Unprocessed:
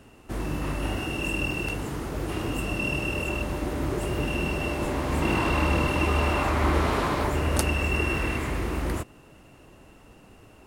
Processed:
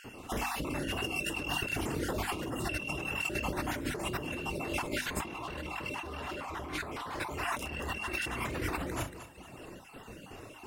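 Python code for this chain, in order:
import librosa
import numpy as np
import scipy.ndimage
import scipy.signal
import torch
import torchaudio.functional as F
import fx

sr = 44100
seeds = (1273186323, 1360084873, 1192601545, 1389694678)

y = fx.spec_dropout(x, sr, seeds[0], share_pct=32)
y = 10.0 ** (-20.0 / 20.0) * np.tanh(y / 10.0 ** (-20.0 / 20.0))
y = fx.low_shelf(y, sr, hz=73.0, db=-9.0)
y = fx.echo_feedback(y, sr, ms=231, feedback_pct=32, wet_db=-13)
y = fx.dereverb_blind(y, sr, rt60_s=0.95)
y = fx.hum_notches(y, sr, base_hz=50, count=6)
y = fx.room_early_taps(y, sr, ms=(33, 65), db=(-11.0, -14.0))
y = fx.over_compress(y, sr, threshold_db=-39.0, ratio=-1.0)
y = F.gain(torch.from_numpy(y), 2.5).numpy()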